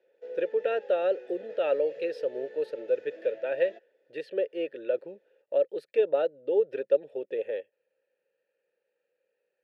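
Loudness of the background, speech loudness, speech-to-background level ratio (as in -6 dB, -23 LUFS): -45.0 LUFS, -30.0 LUFS, 15.0 dB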